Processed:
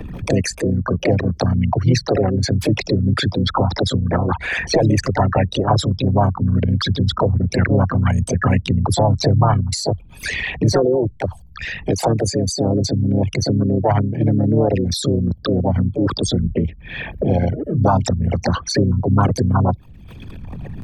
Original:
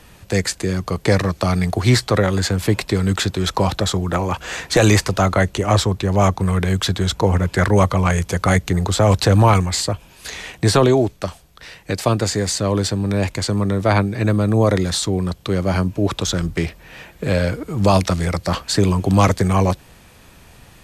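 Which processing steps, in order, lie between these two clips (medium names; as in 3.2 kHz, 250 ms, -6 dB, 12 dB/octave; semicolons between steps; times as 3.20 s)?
resonances exaggerated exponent 3; dynamic bell 720 Hz, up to +5 dB, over -39 dBFS, Q 6.7; harmony voices +5 st -5 dB; three bands compressed up and down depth 70%; trim -1 dB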